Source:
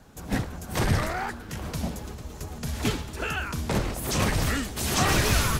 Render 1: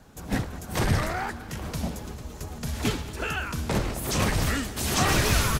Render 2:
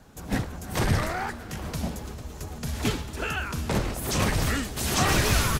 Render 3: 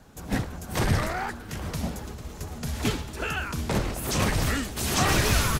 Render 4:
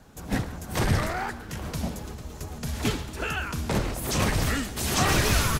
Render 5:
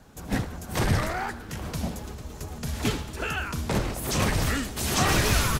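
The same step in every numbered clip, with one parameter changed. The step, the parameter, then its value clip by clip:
feedback delay, time: 207 ms, 321 ms, 737 ms, 137 ms, 78 ms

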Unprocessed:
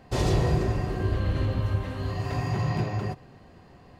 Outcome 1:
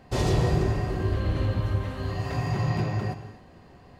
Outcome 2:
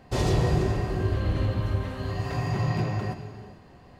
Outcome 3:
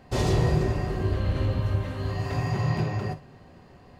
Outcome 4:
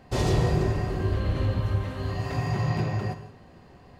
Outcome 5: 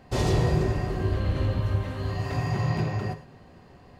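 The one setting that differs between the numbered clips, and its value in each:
gated-style reverb, gate: 300 ms, 470 ms, 80 ms, 200 ms, 130 ms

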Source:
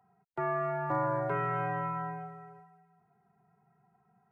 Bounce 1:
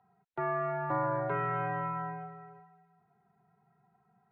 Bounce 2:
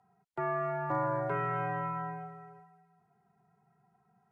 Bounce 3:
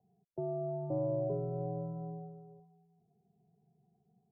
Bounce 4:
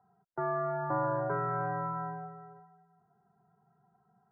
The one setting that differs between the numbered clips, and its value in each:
elliptic low-pass, frequency: 4.1 kHz, 11 kHz, 620 Hz, 1.6 kHz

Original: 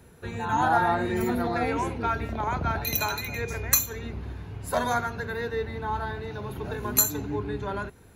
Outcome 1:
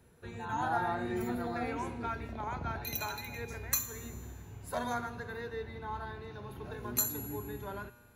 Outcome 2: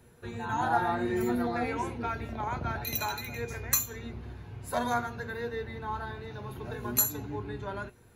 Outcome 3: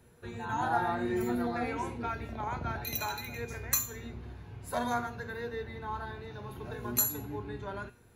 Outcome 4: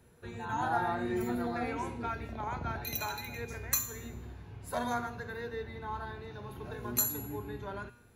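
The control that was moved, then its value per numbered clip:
feedback comb, decay: 1.8 s, 0.15 s, 0.38 s, 0.78 s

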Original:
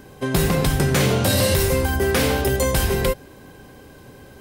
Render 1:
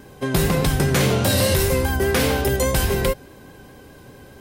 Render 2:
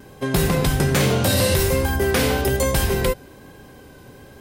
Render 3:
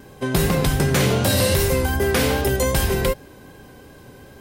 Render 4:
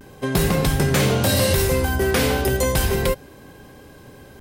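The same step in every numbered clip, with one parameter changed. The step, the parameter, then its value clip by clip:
vibrato, rate: 4.9 Hz, 1.2 Hz, 2.6 Hz, 0.33 Hz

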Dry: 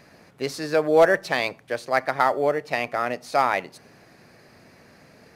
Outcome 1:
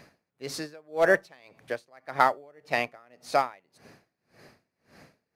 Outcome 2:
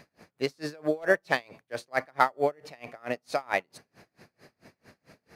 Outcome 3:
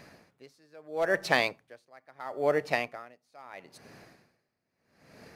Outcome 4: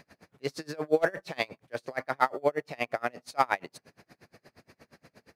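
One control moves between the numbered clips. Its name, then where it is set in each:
logarithmic tremolo, rate: 1.8 Hz, 4.5 Hz, 0.76 Hz, 8.5 Hz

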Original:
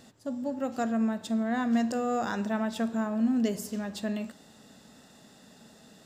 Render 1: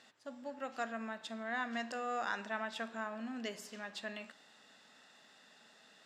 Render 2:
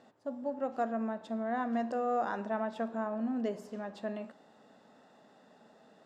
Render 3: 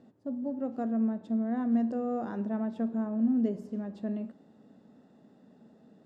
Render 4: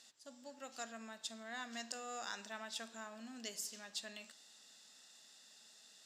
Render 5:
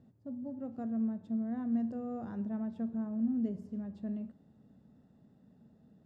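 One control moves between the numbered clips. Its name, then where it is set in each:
band-pass filter, frequency: 2.1 kHz, 740 Hz, 290 Hz, 5.5 kHz, 100 Hz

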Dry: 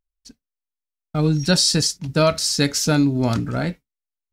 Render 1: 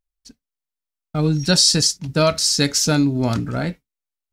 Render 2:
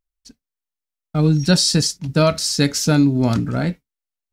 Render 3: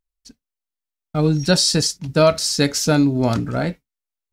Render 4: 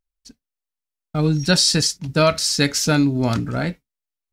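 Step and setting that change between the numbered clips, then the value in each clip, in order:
dynamic bell, frequency: 6.1 kHz, 190 Hz, 580 Hz, 2.1 kHz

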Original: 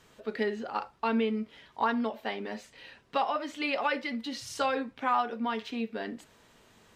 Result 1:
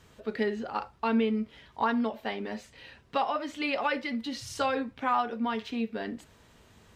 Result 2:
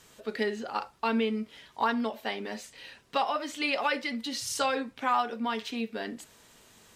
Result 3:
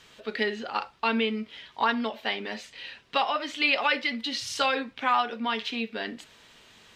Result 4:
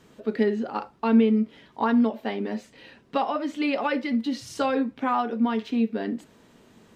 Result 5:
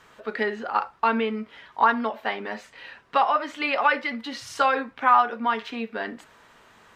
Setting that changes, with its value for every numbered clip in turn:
peaking EQ, frequency: 68 Hz, 11 kHz, 3.3 kHz, 240 Hz, 1.3 kHz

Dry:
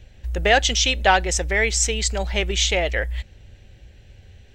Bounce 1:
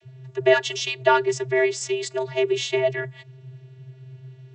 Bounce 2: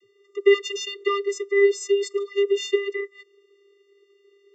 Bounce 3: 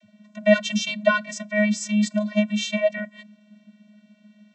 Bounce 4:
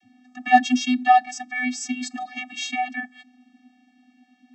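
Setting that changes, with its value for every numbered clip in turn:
vocoder, frequency: 130 Hz, 400 Hz, 210 Hz, 250 Hz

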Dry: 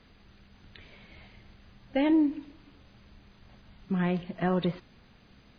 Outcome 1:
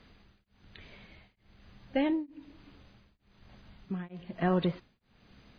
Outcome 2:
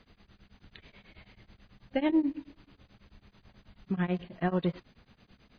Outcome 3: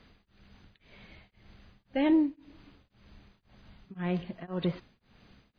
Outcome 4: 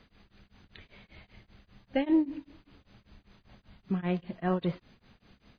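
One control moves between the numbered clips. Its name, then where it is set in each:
tremolo of two beating tones, nulls at: 1.1 Hz, 9.2 Hz, 1.9 Hz, 5.1 Hz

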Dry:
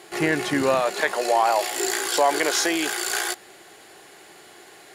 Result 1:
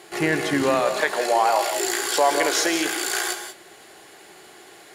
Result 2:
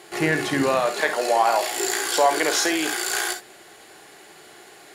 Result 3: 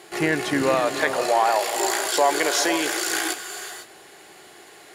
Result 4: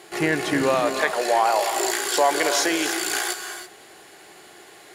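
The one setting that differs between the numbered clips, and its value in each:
gated-style reverb, gate: 210 ms, 80 ms, 530 ms, 350 ms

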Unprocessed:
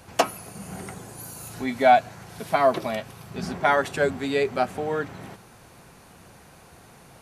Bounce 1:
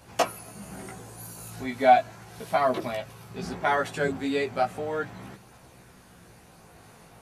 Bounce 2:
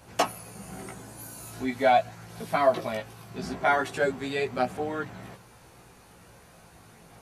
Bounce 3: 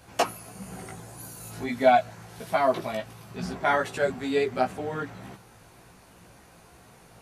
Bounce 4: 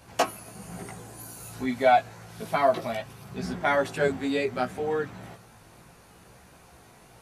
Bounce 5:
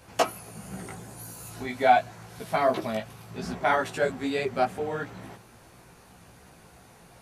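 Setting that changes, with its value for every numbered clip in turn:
chorus, rate: 0.36 Hz, 0.21 Hz, 1.6 Hz, 0.61 Hz, 2.7 Hz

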